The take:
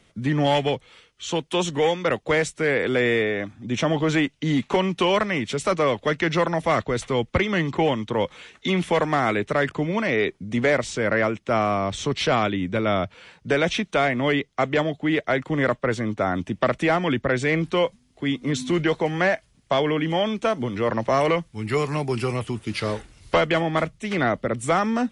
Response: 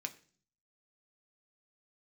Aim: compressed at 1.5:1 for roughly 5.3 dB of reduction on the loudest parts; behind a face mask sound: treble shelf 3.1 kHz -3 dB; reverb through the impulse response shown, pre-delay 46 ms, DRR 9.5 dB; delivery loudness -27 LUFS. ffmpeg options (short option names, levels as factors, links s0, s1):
-filter_complex "[0:a]acompressor=threshold=0.0282:ratio=1.5,asplit=2[s0][s1];[1:a]atrim=start_sample=2205,adelay=46[s2];[s1][s2]afir=irnorm=-1:irlink=0,volume=0.376[s3];[s0][s3]amix=inputs=2:normalize=0,highshelf=f=3100:g=-3,volume=1.12"